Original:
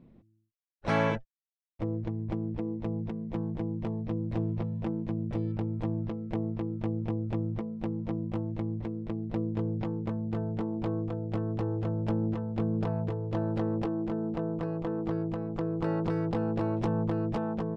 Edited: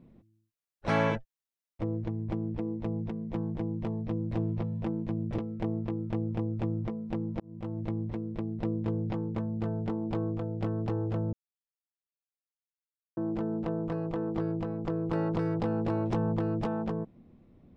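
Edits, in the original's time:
5.38–6.09 cut
8.11–8.54 fade in
12.04–13.88 mute

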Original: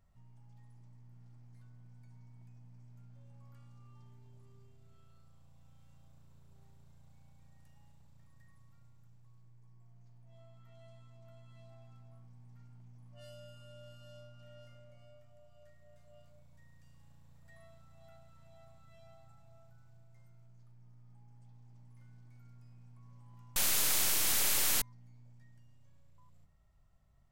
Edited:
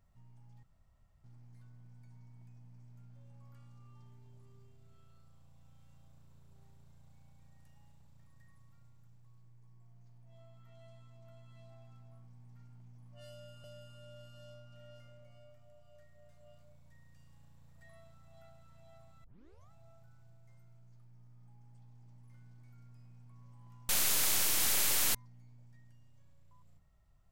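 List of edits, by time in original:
0.63–1.24 room tone
13.31–13.64 loop, 2 plays
18.91 tape start 0.47 s

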